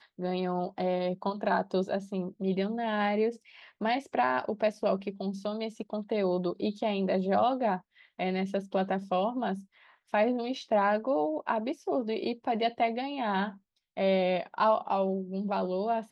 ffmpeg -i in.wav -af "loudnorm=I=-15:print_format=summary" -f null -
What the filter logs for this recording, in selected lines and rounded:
Input Integrated:    -30.2 LUFS
Input True Peak:     -14.1 dBTP
Input LRA:             1.6 LU
Input Threshold:     -40.4 LUFS